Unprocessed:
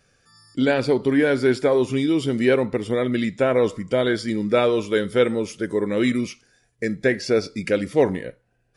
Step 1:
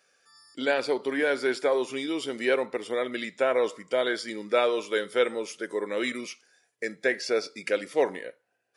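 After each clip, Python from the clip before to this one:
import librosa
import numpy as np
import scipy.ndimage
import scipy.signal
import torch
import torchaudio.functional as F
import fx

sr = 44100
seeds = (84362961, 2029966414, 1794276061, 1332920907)

y = scipy.signal.sosfilt(scipy.signal.butter(2, 490.0, 'highpass', fs=sr, output='sos'), x)
y = y * 10.0 ** (-2.5 / 20.0)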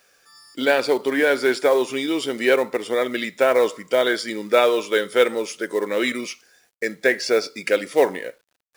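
y = fx.quant_companded(x, sr, bits=6)
y = y * 10.0 ** (7.0 / 20.0)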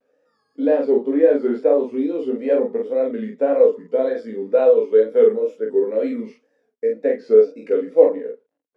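y = fx.double_bandpass(x, sr, hz=350.0, octaves=0.72)
y = fx.wow_flutter(y, sr, seeds[0], rate_hz=2.1, depth_cents=130.0)
y = fx.room_early_taps(y, sr, ms=(18, 46), db=(-4.0, -3.0))
y = y * 10.0 ** (5.5 / 20.0)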